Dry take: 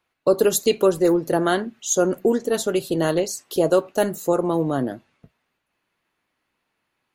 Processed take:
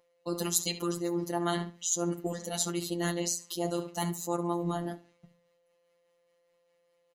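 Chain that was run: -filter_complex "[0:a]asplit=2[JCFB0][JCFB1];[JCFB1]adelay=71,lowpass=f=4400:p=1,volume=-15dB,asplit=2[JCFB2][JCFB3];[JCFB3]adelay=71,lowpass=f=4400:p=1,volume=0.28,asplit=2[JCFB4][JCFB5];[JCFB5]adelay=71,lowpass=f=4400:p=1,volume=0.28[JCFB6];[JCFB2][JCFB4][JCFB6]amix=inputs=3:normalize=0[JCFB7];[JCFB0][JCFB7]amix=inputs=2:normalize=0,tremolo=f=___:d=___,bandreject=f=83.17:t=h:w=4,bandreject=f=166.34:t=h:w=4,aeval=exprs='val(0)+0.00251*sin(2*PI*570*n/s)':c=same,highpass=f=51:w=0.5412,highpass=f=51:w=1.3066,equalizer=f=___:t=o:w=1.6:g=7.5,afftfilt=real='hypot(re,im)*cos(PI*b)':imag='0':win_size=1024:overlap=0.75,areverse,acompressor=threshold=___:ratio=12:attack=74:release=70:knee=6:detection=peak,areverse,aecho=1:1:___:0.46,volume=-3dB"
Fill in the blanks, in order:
4.9, 0.35, 6600, -29dB, 1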